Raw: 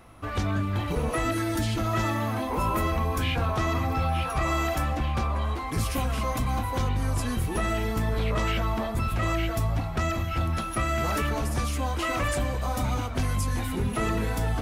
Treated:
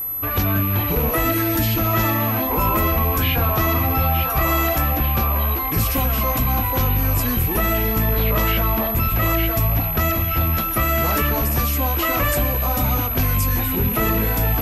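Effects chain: rattle on loud lows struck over -33 dBFS, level -32 dBFS; whistle 12 kHz -30 dBFS; trim +6.5 dB

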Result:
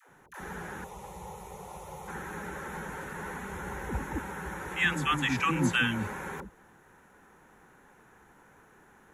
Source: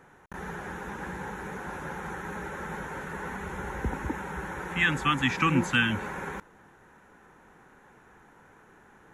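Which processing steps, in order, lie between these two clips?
treble shelf 8.9 kHz +10.5 dB; phase dispersion lows, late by 94 ms, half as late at 470 Hz; 0.84–2.08 s: static phaser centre 660 Hz, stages 4; trim -2.5 dB

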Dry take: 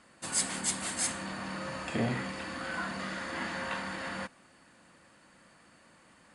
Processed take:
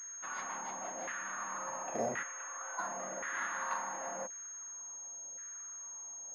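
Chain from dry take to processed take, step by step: 2.23–2.79 s: ladder high-pass 370 Hz, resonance 25%; LFO band-pass saw down 0.93 Hz 590–1700 Hz; class-D stage that switches slowly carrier 6.5 kHz; trim +4 dB

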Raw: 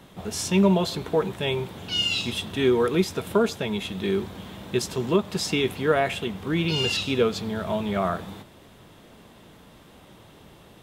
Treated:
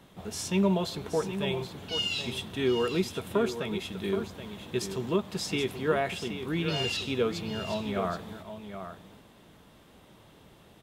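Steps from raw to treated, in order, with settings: delay 775 ms -9.5 dB; trim -6 dB

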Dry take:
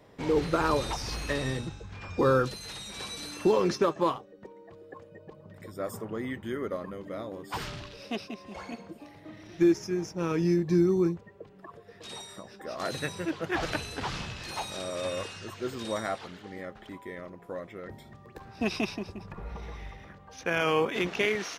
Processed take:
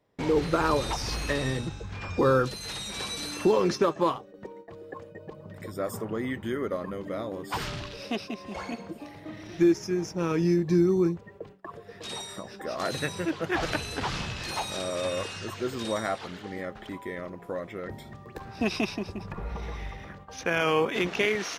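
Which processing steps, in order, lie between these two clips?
gate with hold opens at -42 dBFS; in parallel at -1 dB: compression, threshold -37 dBFS, peak gain reduction 17.5 dB

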